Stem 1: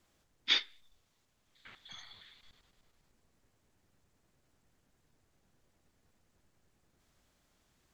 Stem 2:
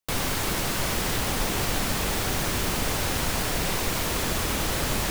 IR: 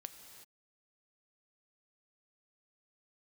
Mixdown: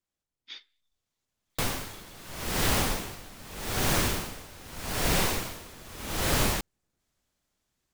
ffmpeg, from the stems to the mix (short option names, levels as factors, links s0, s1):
-filter_complex "[0:a]highshelf=f=4100:g=6,volume=0.106[s0];[1:a]flanger=delay=8.1:depth=4.2:regen=-76:speed=0.46:shape=sinusoidal,aeval=exprs='val(0)*pow(10,-23*(0.5-0.5*cos(2*PI*0.82*n/s))/20)':c=same,adelay=1500,volume=0.562[s1];[s0][s1]amix=inputs=2:normalize=0,dynaudnorm=f=720:g=3:m=3.76"